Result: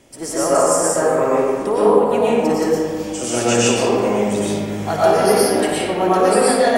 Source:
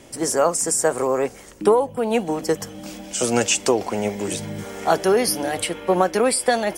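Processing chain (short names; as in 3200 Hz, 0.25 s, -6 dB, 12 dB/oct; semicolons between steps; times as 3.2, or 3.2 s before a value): flutter echo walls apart 9.8 m, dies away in 0.31 s; reverb RT60 2.0 s, pre-delay 75 ms, DRR -9.5 dB; gain -5.5 dB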